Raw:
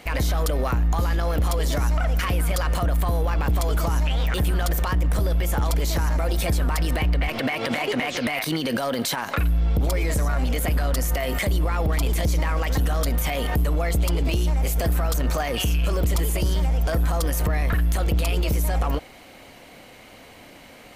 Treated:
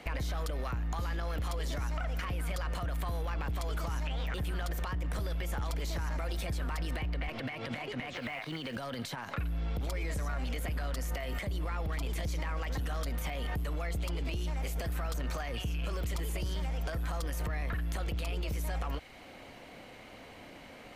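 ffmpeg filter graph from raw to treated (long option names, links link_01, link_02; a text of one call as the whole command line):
ffmpeg -i in.wav -filter_complex "[0:a]asettb=1/sr,asplit=3[link_01][link_02][link_03];[link_01]atrim=end=8.134[link_04];[link_02]atrim=start=8.13:end=8.76,asetpts=PTS-STARTPTS,afade=type=in:duration=0.004:curve=qsin,afade=type=out:start_time=0.626:duration=0.004:curve=qsin,acrossover=split=3700[link_05][link_06];[link_06]acompressor=threshold=-47dB:ratio=4:attack=1:release=60[link_07];[link_05][link_07]amix=inputs=2:normalize=0,tiltshelf=frequency=630:gain=-5.5,acrusher=bits=4:mode=log:mix=0:aa=0.000001[link_08];[link_03]atrim=start=8.756[link_09];[link_04][link_08]acrossfade=duration=0.004:curve1=hsin:curve2=qsin[link_10];[link_10][link_09]acrossfade=duration=0.004:curve1=qsin:curve2=hsin,lowpass=frequency=3900:poles=1,acrossover=split=150|1300[link_11][link_12][link_13];[link_11]acompressor=threshold=-31dB:ratio=4[link_14];[link_12]acompressor=threshold=-39dB:ratio=4[link_15];[link_13]acompressor=threshold=-39dB:ratio=4[link_16];[link_14][link_15][link_16]amix=inputs=3:normalize=0,volume=-3.5dB" out.wav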